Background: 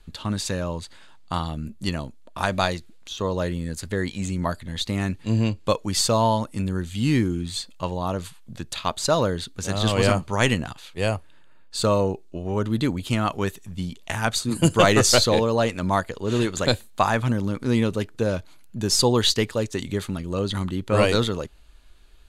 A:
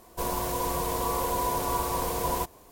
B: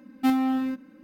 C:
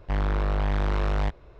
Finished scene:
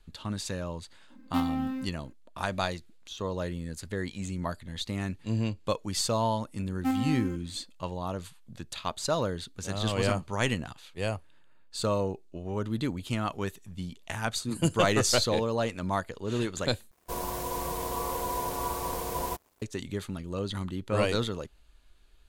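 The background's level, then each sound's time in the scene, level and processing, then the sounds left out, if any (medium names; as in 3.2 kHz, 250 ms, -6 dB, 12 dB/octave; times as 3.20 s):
background -7.5 dB
1.10 s: add B -6.5 dB
6.61 s: add B -6 dB + peaking EQ 3.6 kHz -14 dB 0.39 oct
16.91 s: replace with A -3.5 dB + crossover distortion -51 dBFS
not used: C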